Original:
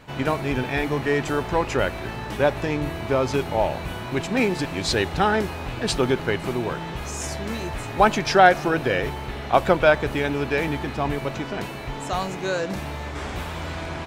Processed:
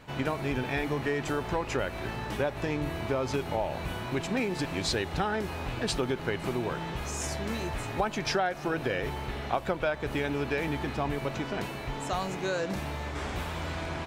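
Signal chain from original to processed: compressor 6:1, threshold -22 dBFS, peak gain reduction 13 dB; gain -3.5 dB

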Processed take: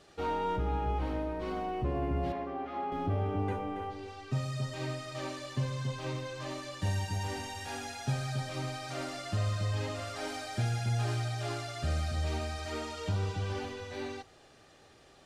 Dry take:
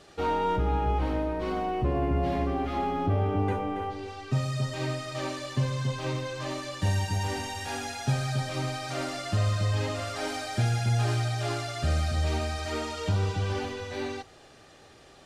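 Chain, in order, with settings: 2.32–2.92 band-pass 880 Hz, Q 0.53; gain -5.5 dB

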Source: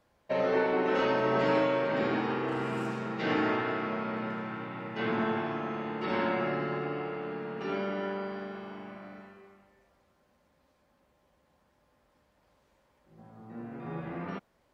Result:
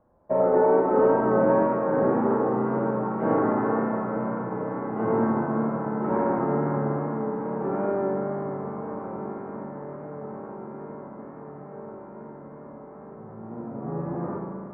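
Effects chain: LPF 1100 Hz 24 dB/oct; on a send: diffused feedback echo 1.461 s, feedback 68%, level -11 dB; on the sum: Schroeder reverb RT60 2.4 s, combs from 28 ms, DRR 1 dB; wow and flutter 27 cents; gain +6 dB

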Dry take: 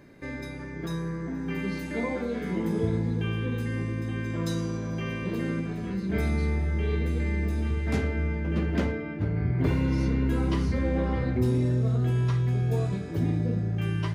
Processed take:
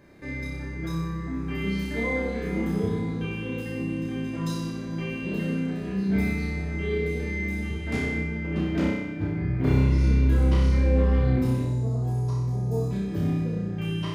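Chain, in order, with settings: 11.63–12.91 band shelf 2200 Hz -15 dB; flutter echo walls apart 5.3 m, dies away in 0.9 s; gain -2.5 dB

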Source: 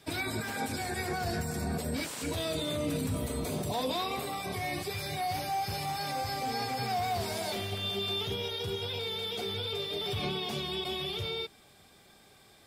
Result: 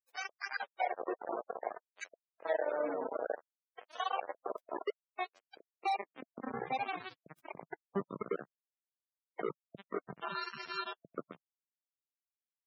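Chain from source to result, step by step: 9.56–10.94 sample sorter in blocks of 32 samples; LFO band-pass sine 0.59 Hz 310–1800 Hz; requantised 6-bit, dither none; loudest bins only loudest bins 32; compressor 1.5:1, threshold -51 dBFS, peak gain reduction 7 dB; high-pass sweep 560 Hz -> 160 Hz, 5.1–6.87; gain +8 dB

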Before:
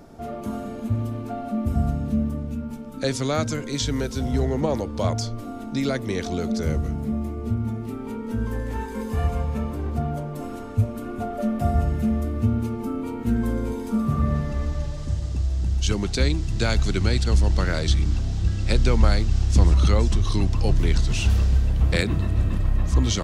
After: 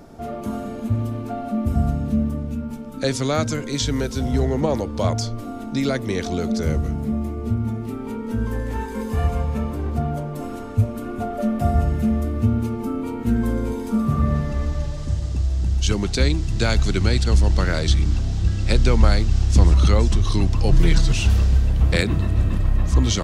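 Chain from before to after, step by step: 20.72–21.12 comb 6.2 ms, depth 96%; gain +2.5 dB

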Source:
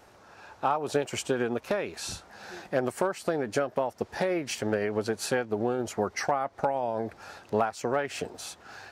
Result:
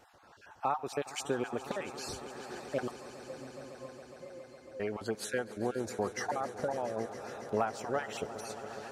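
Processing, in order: random spectral dropouts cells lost 27%; 2.91–4.8 octave resonator C, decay 0.37 s; swelling echo 0.138 s, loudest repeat 5, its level -17 dB; gain -5 dB

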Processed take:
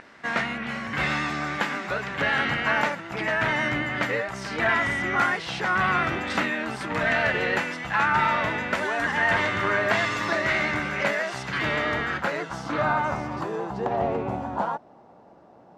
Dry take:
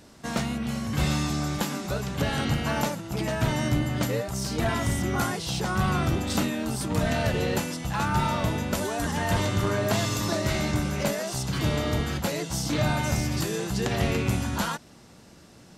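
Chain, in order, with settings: RIAA curve recording; vibrato 9.2 Hz 27 cents; low-pass sweep 1900 Hz -> 790 Hz, 11.77–14.09; gain +2.5 dB

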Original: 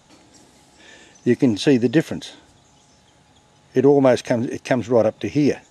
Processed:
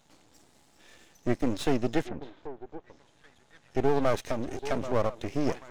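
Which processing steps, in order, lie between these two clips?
delay with a stepping band-pass 0.785 s, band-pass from 480 Hz, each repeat 1.4 oct, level -11 dB; half-wave rectifier; 2.03–3.77 treble ducked by the level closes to 1700 Hz, closed at -30 dBFS; gain -6 dB

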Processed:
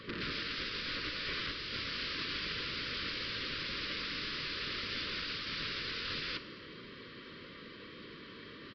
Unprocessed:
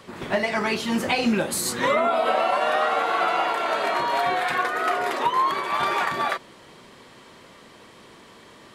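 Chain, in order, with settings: rattling part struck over -37 dBFS, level -27 dBFS; 0.73–1.36 dynamic EQ 2000 Hz, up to -7 dB, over -40 dBFS, Q 2; limiter -17 dBFS, peak gain reduction 7 dB; wrapped overs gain 30 dB; Butterworth band-stop 780 Hz, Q 1.1; outdoor echo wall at 46 m, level -23 dB; FDN reverb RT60 1.6 s, low-frequency decay 0.85×, high-frequency decay 0.9×, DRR 12 dB; downsampling 11025 Hz; AAC 48 kbps 24000 Hz

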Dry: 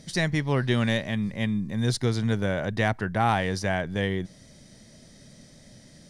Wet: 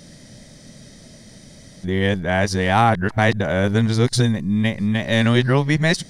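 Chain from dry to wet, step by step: whole clip reversed; gain +7.5 dB

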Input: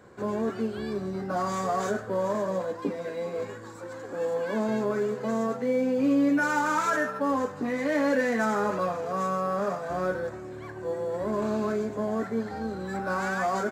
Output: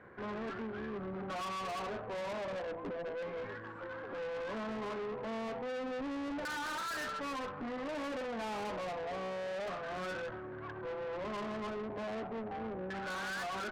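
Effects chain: LFO low-pass saw down 0.31 Hz 620–2000 Hz; tube stage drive 34 dB, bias 0.4; gain -3.5 dB

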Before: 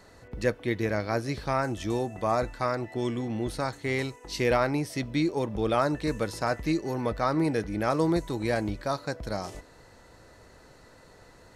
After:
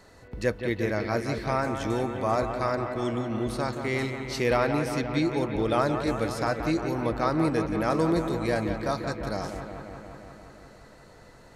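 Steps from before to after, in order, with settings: on a send: analogue delay 0.175 s, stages 4096, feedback 76%, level -8 dB

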